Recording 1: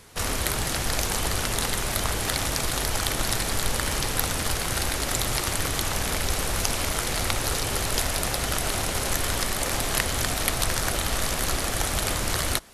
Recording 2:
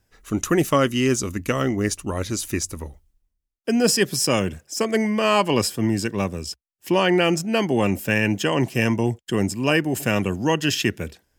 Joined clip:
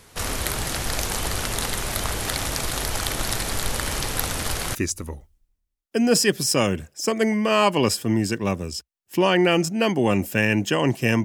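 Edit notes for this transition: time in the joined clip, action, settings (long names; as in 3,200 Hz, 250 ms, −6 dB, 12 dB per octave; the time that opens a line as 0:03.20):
recording 1
0:04.75: continue with recording 2 from 0:02.48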